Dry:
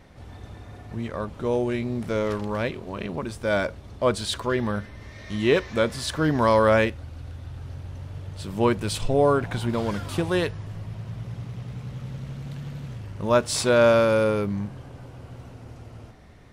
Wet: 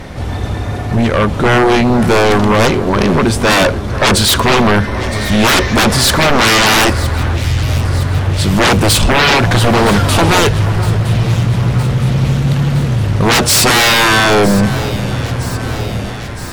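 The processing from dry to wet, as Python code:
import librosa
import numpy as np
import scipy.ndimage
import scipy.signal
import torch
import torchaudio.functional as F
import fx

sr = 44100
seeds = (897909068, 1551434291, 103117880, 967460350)

y = fx.fold_sine(x, sr, drive_db=19, ceiling_db=-6.5)
y = fx.echo_alternate(y, sr, ms=482, hz=1900.0, feedback_pct=80, wet_db=-13.0)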